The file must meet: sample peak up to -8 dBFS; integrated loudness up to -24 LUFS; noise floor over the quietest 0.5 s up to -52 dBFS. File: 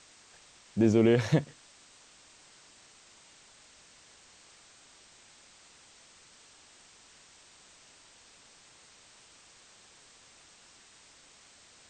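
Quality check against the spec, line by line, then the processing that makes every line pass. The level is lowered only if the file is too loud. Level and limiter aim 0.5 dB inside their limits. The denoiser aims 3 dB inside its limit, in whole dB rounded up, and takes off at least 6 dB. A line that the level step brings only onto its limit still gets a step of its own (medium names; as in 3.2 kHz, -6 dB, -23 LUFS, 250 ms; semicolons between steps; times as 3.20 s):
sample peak -11.5 dBFS: pass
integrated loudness -26.0 LUFS: pass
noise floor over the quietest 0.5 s -58 dBFS: pass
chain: none needed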